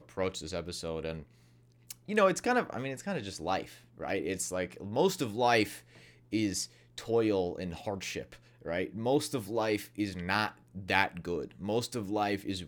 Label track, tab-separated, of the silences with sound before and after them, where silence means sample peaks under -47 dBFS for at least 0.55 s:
1.230000	1.890000	silence